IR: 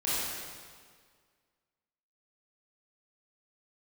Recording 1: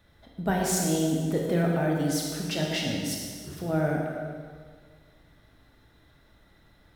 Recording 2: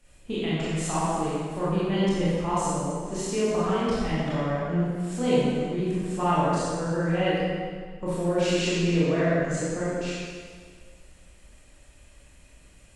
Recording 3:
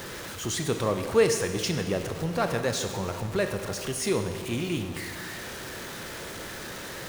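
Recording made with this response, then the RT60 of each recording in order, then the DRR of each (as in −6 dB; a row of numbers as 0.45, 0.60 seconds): 2; 1.8, 1.8, 1.8 seconds; −1.5, −10.5, 6.5 decibels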